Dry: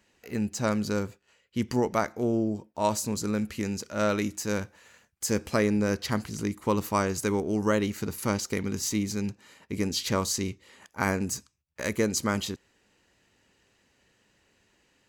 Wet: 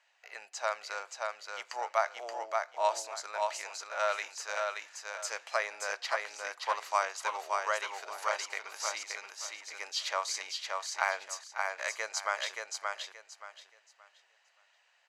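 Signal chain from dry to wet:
elliptic high-pass filter 650 Hz, stop band 80 dB
high-frequency loss of the air 80 metres
repeating echo 576 ms, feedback 25%, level −3.5 dB

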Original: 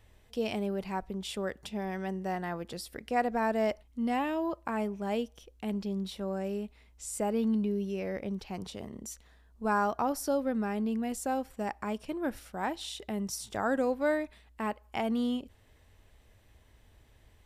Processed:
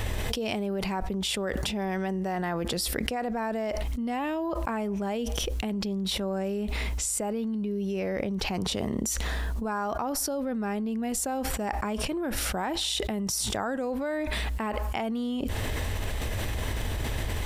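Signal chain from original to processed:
envelope flattener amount 100%
level −5.5 dB

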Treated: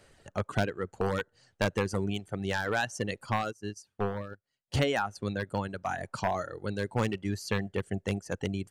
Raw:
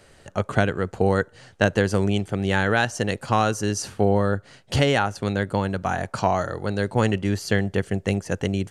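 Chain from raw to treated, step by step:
wavefolder on the positive side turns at −12 dBFS
reverb reduction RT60 1.4 s
0:03.36–0:04.74: expander for the loud parts 2.5 to 1, over −35 dBFS
level −6.5 dB

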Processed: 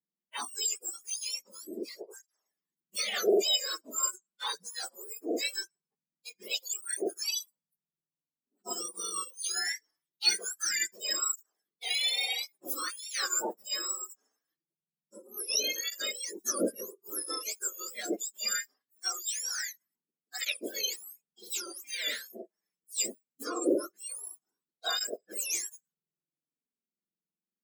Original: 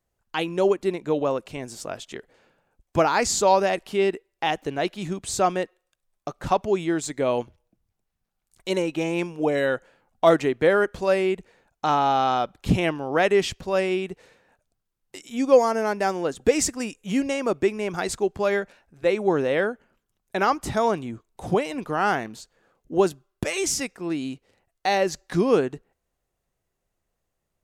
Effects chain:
frequency axis turned over on the octave scale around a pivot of 1,700 Hz
noise reduction from a noise print of the clip's start 18 dB
through-zero flanger with one copy inverted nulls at 0.22 Hz, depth 7.9 ms
level −3 dB

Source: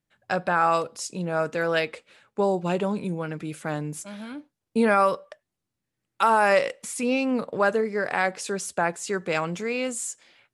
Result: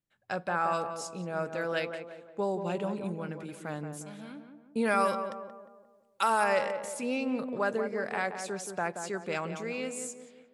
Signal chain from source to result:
0:04.85–0:06.44: high-shelf EQ 2,800 Hz +10 dB
tape delay 177 ms, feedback 53%, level −5.5 dB, low-pass 1,200 Hz
level −8 dB

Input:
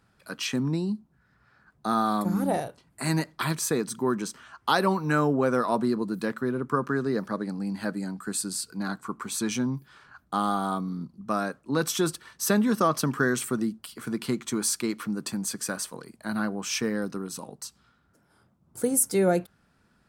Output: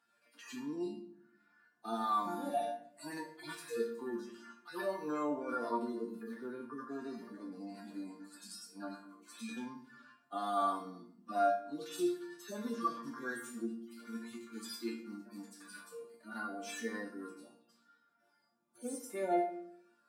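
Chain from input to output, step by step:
harmonic-percussive split with one part muted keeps harmonic
brickwall limiter −19 dBFS, peak gain reduction 7.5 dB
high-pass filter 380 Hz 12 dB per octave
resonators tuned to a chord A#3 major, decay 0.31 s
convolution reverb RT60 0.70 s, pre-delay 7 ms, DRR 7.5 dB
level +14 dB

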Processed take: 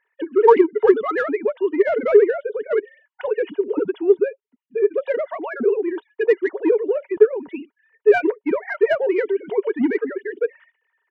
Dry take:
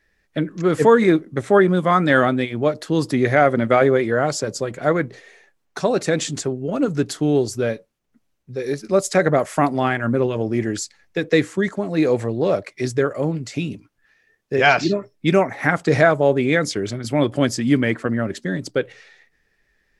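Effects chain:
three sine waves on the formant tracks
parametric band 1,900 Hz +3 dB 0.53 octaves
in parallel at −4.5 dB: soft clipping −15.5 dBFS, distortion −9 dB
on the sum: hollow resonant body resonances 420/940/2,900 Hz, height 13 dB, ringing for 70 ms
tempo change 1.8×
level −8 dB

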